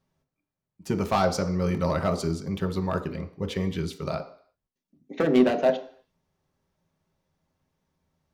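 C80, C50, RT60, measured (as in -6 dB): 15.5 dB, 12.5 dB, 0.55 s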